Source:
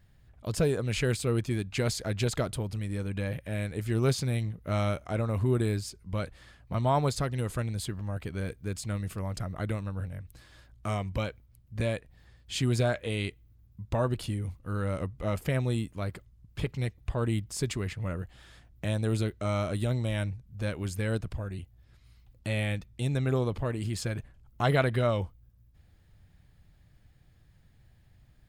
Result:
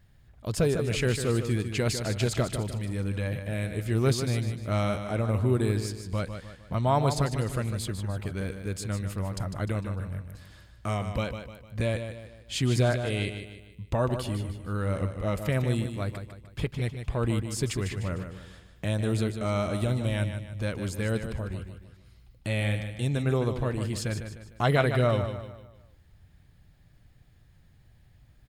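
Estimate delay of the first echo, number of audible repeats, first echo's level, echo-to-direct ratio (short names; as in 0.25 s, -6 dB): 0.151 s, 4, -8.5 dB, -7.5 dB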